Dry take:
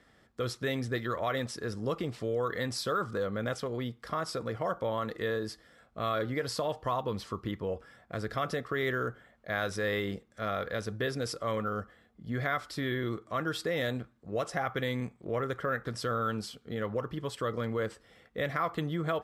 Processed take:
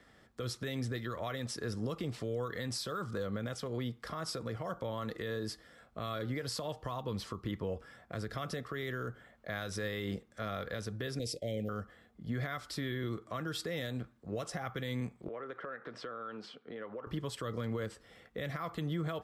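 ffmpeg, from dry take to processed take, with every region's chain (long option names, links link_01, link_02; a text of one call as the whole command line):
ffmpeg -i in.wav -filter_complex "[0:a]asettb=1/sr,asplit=3[link_01][link_02][link_03];[link_01]atrim=end=11.194[link_04];[link_02]atrim=start=11.19:end=11.69,asetpts=PTS-STARTPTS,afade=type=in:duration=0.004:curve=qsin,afade=type=out:start_time=0.496:duration=0.004:curve=qsin,agate=range=-33dB:threshold=-41dB:ratio=3:release=100:detection=peak,asuperstop=centerf=1200:order=8:qfactor=0.86[link_05];[link_03]atrim=start=11.686[link_06];[link_04][link_05]acrossfade=duration=0.004:curve1=hsin:curve2=qsin[link_07];[link_07][link_06]acrossfade=duration=0.004:curve1=qsin:curve2=hsin,asettb=1/sr,asplit=3[link_08][link_09][link_10];[link_08]atrim=end=15.284[link_11];[link_09]atrim=start=15.28:end=17.07,asetpts=PTS-STARTPTS,afade=type=in:duration=0.004:curve=qsin,afade=type=out:start_time=1.786:duration=0.004:curve=qsin,highpass=290,lowpass=2700,acompressor=threshold=-42dB:ratio=3:attack=3.2:release=140:knee=1:detection=peak[link_12];[link_10]atrim=start=17.066[link_13];[link_11][link_12]acrossfade=duration=0.004:curve1=hsin:curve2=qsin[link_14];[link_14][link_13]acrossfade=duration=0.004:curve1=qsin:curve2=hsin,acrossover=split=250|3000[link_15][link_16][link_17];[link_16]acompressor=threshold=-40dB:ratio=2[link_18];[link_15][link_18][link_17]amix=inputs=3:normalize=0,alimiter=level_in=4dB:limit=-24dB:level=0:latency=1:release=145,volume=-4dB,volume=1dB" out.wav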